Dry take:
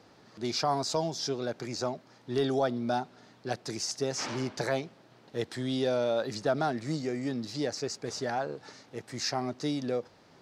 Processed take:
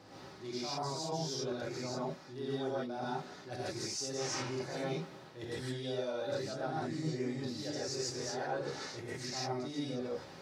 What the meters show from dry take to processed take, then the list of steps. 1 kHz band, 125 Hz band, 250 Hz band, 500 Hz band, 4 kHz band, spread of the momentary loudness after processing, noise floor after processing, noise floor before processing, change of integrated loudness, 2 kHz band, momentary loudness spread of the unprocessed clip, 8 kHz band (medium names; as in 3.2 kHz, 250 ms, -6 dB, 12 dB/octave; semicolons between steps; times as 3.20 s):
-6.5 dB, -4.0 dB, -6.0 dB, -6.5 dB, -4.5 dB, 6 LU, -52 dBFS, -59 dBFS, -6.0 dB, -5.0 dB, 10 LU, -3.5 dB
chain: reverse; compression 10:1, threshold -42 dBFS, peak gain reduction 19 dB; reverse; comb of notches 230 Hz; gated-style reverb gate 180 ms rising, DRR -7 dB; trim +1.5 dB